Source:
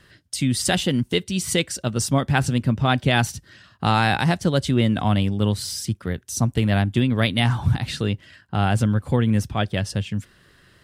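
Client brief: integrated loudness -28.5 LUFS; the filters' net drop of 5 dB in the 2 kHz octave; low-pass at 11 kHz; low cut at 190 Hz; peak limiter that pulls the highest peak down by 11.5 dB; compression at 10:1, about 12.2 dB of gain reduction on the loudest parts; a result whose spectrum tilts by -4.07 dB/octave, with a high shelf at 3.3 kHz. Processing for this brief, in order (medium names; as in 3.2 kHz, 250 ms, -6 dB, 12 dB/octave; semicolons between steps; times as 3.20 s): high-pass 190 Hz; low-pass 11 kHz; peaking EQ 2 kHz -8.5 dB; treble shelf 3.3 kHz +4.5 dB; compression 10:1, threshold -29 dBFS; trim +8.5 dB; peak limiter -18 dBFS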